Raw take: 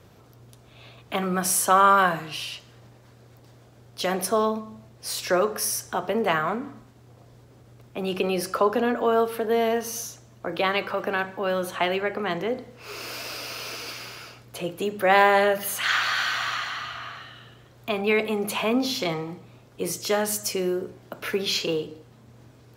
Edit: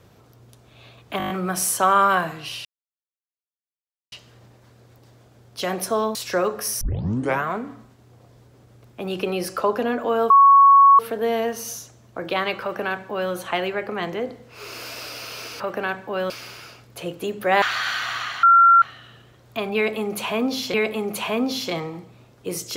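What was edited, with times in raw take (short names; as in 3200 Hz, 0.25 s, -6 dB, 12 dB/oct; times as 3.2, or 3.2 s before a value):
1.18 stutter 0.02 s, 7 plays
2.53 insert silence 1.47 s
4.56–5.12 cut
5.78 tape start 0.65 s
9.27 add tone 1110 Hz -8 dBFS 0.69 s
10.9–11.6 copy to 13.88
15.2–15.94 cut
16.75–17.14 bleep 1370 Hz -9 dBFS
18.08–19.06 loop, 2 plays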